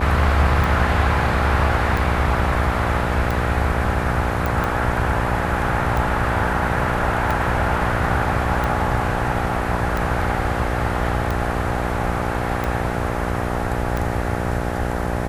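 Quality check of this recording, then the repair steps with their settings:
buzz 60 Hz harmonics 14 -25 dBFS
tick 45 rpm
4.46 s: pop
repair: de-click; de-hum 60 Hz, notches 14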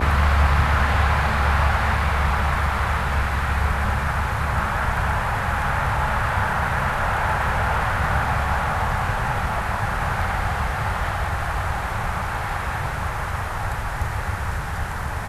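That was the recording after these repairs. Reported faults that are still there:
nothing left

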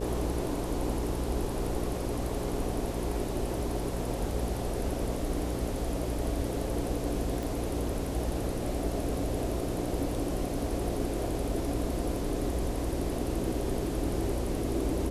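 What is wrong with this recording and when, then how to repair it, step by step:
buzz 60 Hz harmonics 9 -36 dBFS
7.43 s: pop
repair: de-click; de-hum 60 Hz, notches 9

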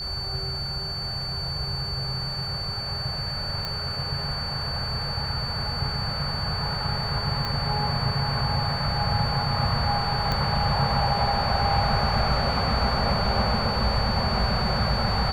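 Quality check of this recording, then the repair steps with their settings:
whine 4.5 kHz -30 dBFS
3.65 s: pop -15 dBFS
7.45 s: pop -15 dBFS
10.32 s: pop -12 dBFS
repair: de-click; band-stop 4.5 kHz, Q 30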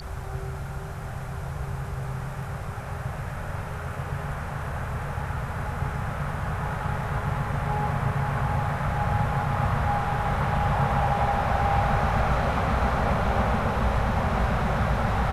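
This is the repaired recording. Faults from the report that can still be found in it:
7.45 s: pop
10.32 s: pop

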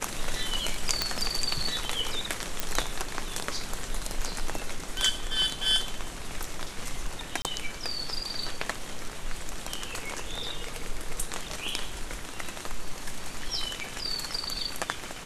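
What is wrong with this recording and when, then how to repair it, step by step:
1.02 s: pop -9 dBFS
2.60 s: pop
7.42–7.45 s: dropout 28 ms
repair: de-click; interpolate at 7.42 s, 28 ms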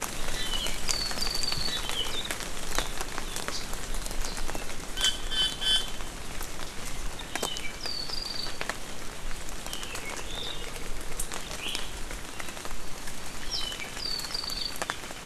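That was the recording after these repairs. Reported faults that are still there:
nothing left

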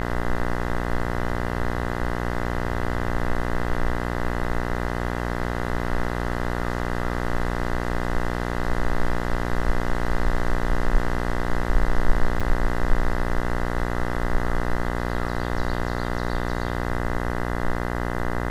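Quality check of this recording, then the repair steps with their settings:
buzz 60 Hz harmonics 34 -27 dBFS
12.40–12.41 s: dropout 5.9 ms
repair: de-hum 60 Hz, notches 34; interpolate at 12.40 s, 5.9 ms

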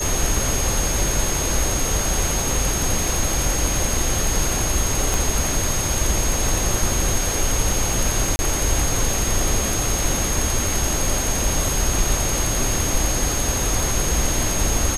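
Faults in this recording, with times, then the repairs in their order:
crackle 24 per s -27 dBFS
whine 6.5 kHz -25 dBFS
5.14 s: pop
8.36–8.39 s: dropout 30 ms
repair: de-click; band-stop 6.5 kHz, Q 30; interpolate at 8.36 s, 30 ms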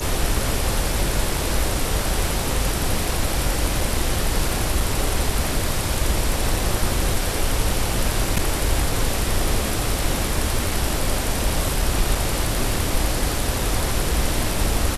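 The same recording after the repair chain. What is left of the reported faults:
nothing left

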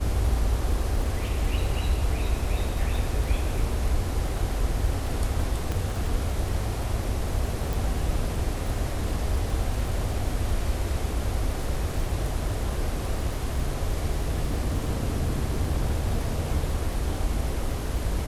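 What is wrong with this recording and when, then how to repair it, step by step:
crackle 24 per s -32 dBFS
5.72 s: pop
7.73 s: pop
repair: de-click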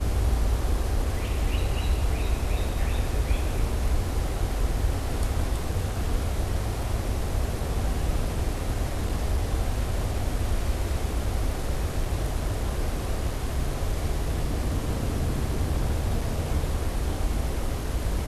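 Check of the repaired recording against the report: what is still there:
nothing left

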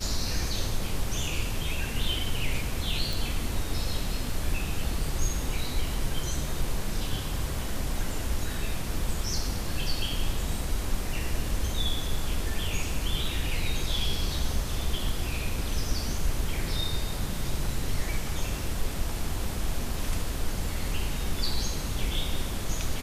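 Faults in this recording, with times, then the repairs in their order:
3.13 s: pop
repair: de-click

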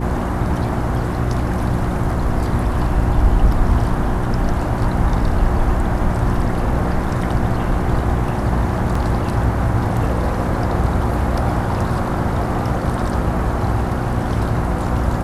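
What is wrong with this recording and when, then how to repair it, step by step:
hum 60 Hz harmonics 6 -23 dBFS
8.95 s: dropout 4.1 ms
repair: de-hum 60 Hz, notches 6; interpolate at 8.95 s, 4.1 ms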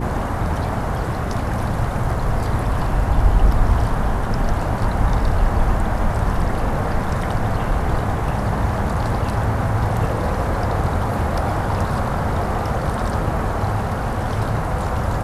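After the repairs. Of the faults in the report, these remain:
nothing left

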